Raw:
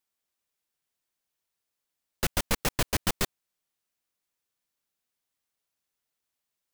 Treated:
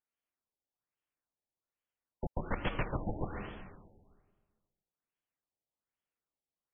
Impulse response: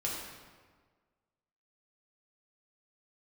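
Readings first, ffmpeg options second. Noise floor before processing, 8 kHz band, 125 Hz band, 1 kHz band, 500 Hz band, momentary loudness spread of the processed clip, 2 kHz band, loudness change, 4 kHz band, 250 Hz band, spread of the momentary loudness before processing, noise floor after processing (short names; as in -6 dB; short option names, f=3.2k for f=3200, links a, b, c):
-85 dBFS, under -40 dB, -3.5 dB, -5.5 dB, -4.5 dB, 12 LU, -9.0 dB, -9.5 dB, -18.0 dB, -4.0 dB, 5 LU, under -85 dBFS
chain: -filter_complex "[0:a]asplit=2[a][b];[1:a]atrim=start_sample=2205,adelay=136[c];[b][c]afir=irnorm=-1:irlink=0,volume=-7dB[d];[a][d]amix=inputs=2:normalize=0,afftfilt=real='re*lt(b*sr/1024,880*pow(3500/880,0.5+0.5*sin(2*PI*1.2*pts/sr)))':imag='im*lt(b*sr/1024,880*pow(3500/880,0.5+0.5*sin(2*PI*1.2*pts/sr)))':win_size=1024:overlap=0.75,volume=-6.5dB"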